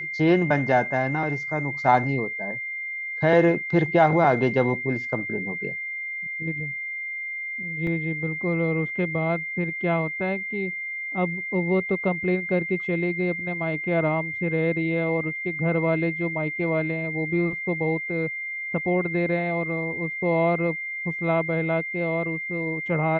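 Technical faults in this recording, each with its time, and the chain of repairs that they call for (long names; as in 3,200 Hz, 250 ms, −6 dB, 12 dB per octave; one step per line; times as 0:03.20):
whistle 2,100 Hz −29 dBFS
0:07.87: drop-out 2.3 ms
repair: notch filter 2,100 Hz, Q 30
repair the gap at 0:07.87, 2.3 ms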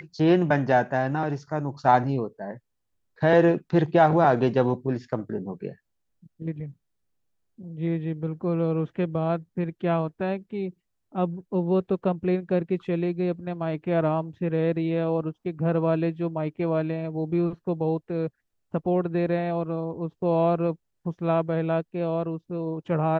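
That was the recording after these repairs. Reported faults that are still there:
none of them is left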